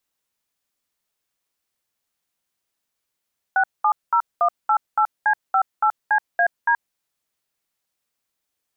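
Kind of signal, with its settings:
touch tones "670188C58CAD", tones 77 ms, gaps 206 ms, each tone −17 dBFS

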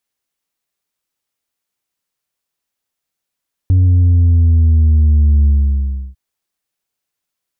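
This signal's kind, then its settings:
bass drop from 93 Hz, over 2.45 s, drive 3 dB, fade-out 0.69 s, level −7.5 dB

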